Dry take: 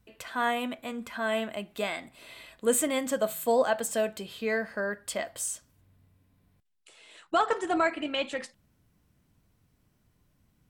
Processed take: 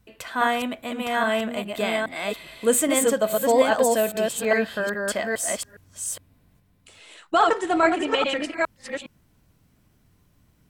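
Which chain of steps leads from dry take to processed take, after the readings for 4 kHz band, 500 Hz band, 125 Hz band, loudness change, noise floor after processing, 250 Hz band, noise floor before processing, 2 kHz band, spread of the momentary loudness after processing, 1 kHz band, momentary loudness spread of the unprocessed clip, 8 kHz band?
+7.0 dB, +7.0 dB, n/a, +6.5 dB, -63 dBFS, +7.0 dB, -70 dBFS, +7.0 dB, 12 LU, +7.0 dB, 12 LU, +7.0 dB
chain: reverse delay 0.412 s, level -2 dB; gain +5 dB

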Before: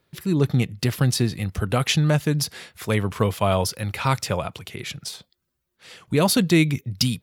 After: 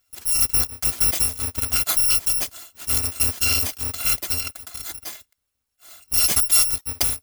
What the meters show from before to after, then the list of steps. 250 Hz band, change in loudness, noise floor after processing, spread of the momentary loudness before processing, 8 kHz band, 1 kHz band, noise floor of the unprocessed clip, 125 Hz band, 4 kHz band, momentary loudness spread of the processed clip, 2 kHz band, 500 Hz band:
-18.0 dB, +3.5 dB, -78 dBFS, 14 LU, +11.0 dB, -8.5 dB, -78 dBFS, -14.0 dB, +2.5 dB, 15 LU, -2.0 dB, -16.0 dB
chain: FFT order left unsorted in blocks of 256 samples

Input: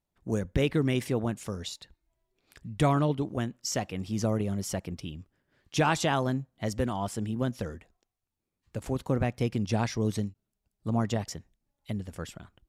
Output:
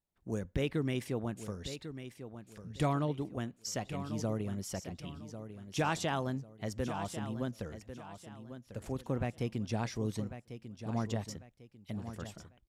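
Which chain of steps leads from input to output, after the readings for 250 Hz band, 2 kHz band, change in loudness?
-6.5 dB, -6.5 dB, -7.5 dB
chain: feedback echo 1.096 s, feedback 31%, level -11 dB; gain -7 dB

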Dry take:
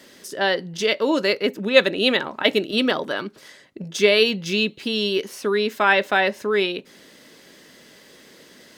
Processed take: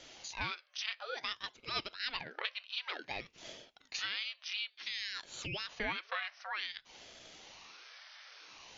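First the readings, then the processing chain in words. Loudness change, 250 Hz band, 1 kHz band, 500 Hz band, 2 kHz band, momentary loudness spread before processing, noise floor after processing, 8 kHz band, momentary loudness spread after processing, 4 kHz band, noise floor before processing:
-19.0 dB, -29.0 dB, -17.5 dB, -30.0 dB, -17.0 dB, 10 LU, -69 dBFS, -12.5 dB, 15 LU, -14.5 dB, -50 dBFS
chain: FFT band-pass 780–6000 Hz; compressor 3:1, threshold -37 dBFS, peak gain reduction 17.5 dB; ring modulator with a swept carrier 790 Hz, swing 75%, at 0.55 Hz

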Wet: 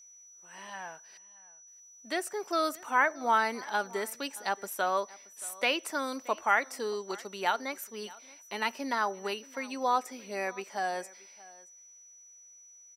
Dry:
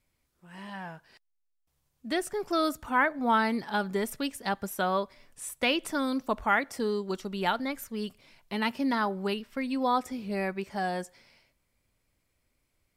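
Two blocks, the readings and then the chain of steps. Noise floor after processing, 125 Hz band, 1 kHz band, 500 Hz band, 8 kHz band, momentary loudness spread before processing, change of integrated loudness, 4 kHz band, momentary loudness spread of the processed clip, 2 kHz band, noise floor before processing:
-55 dBFS, under -10 dB, 0.0 dB, -2.5 dB, +3.5 dB, 14 LU, -2.0 dB, -2.0 dB, 23 LU, 0.0 dB, -77 dBFS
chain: HPF 450 Hz 12 dB/oct; dynamic EQ 3400 Hz, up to -6 dB, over -56 dBFS, Q 6.1; whine 5900 Hz -52 dBFS; echo 0.626 s -22 dB

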